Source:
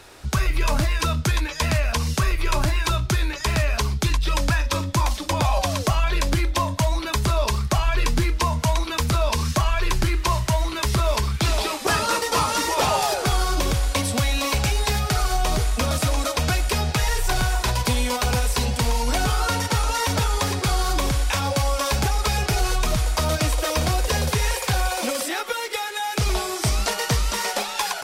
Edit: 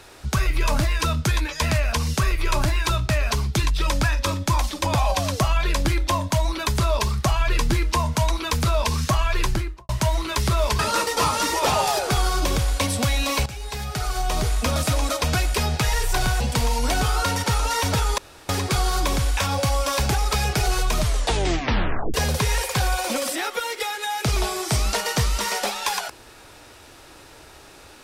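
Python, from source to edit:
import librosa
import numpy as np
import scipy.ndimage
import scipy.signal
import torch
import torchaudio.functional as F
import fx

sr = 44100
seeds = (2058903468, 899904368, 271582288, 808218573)

y = fx.studio_fade_out(x, sr, start_s=9.9, length_s=0.46)
y = fx.edit(y, sr, fx.cut(start_s=3.09, length_s=0.47),
    fx.cut(start_s=11.26, length_s=0.68),
    fx.fade_in_from(start_s=14.61, length_s=1.11, floor_db=-15.5),
    fx.cut(start_s=17.55, length_s=1.09),
    fx.insert_room_tone(at_s=20.42, length_s=0.31),
    fx.tape_stop(start_s=22.93, length_s=1.14), tone=tone)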